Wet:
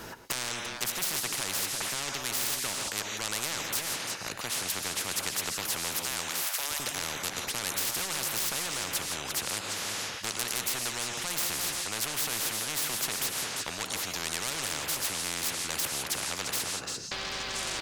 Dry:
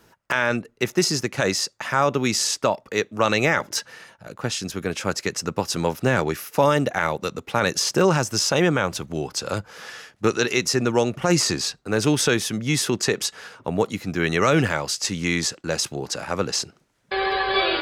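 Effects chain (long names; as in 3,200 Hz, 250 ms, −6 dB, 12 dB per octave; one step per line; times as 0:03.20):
0:06.00–0:06.80: Butterworth high-pass 790 Hz 48 dB per octave
reverb whose tail is shaped and stops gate 190 ms rising, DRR 10.5 dB
soft clipping −13.5 dBFS, distortion −14 dB
single-tap delay 345 ms −19 dB
every bin compressed towards the loudest bin 10 to 1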